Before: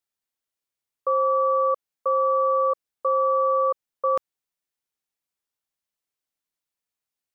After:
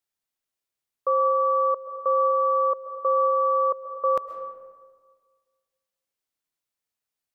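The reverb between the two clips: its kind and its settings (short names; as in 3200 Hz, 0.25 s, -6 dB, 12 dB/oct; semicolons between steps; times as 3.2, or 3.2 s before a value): digital reverb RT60 1.6 s, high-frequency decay 0.45×, pre-delay 90 ms, DRR 9.5 dB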